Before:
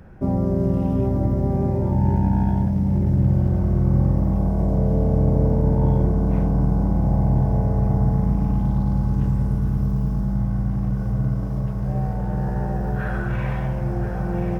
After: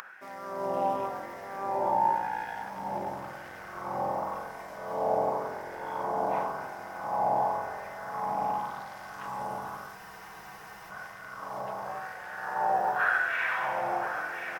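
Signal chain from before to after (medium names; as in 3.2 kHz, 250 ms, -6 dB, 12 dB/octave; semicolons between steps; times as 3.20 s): upward compressor, threshold -35 dBFS; LFO high-pass sine 0.92 Hz 770–1800 Hz; frequency-shifting echo 278 ms, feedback 47%, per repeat -45 Hz, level -13.5 dB; spectral freeze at 9.98 s, 0.93 s; trim +2.5 dB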